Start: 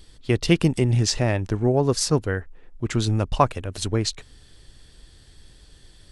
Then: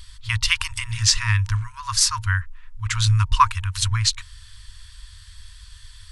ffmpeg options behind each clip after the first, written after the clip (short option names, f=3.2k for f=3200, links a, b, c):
-af "afftfilt=real='re*(1-between(b*sr/4096,110,920))':imag='im*(1-between(b*sr/4096,110,920))':win_size=4096:overlap=0.75,volume=7dB"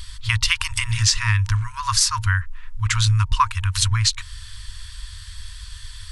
-af "acompressor=threshold=-25dB:ratio=2.5,volume=7dB"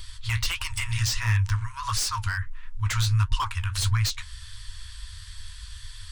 -filter_complex "[0:a]flanger=delay=7.2:depth=9:regen=-51:speed=1.5:shape=triangular,acrossover=split=460[a][b];[b]asoftclip=type=hard:threshold=-24.5dB[c];[a][c]amix=inputs=2:normalize=0"